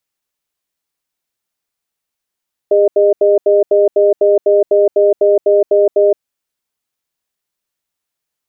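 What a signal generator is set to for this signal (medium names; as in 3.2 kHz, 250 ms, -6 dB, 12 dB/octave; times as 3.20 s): cadence 406 Hz, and 612 Hz, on 0.17 s, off 0.08 s, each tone -9.5 dBFS 3.50 s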